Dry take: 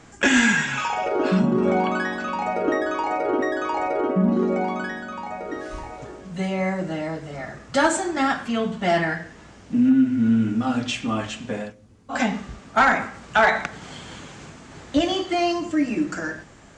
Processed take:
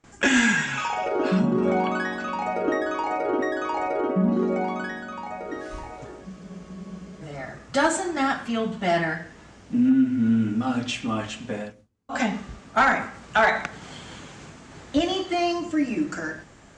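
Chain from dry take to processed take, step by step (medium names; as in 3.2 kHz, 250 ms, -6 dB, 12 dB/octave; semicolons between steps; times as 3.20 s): gate with hold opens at -39 dBFS; spectral freeze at 6.27 s, 0.95 s; trim -2 dB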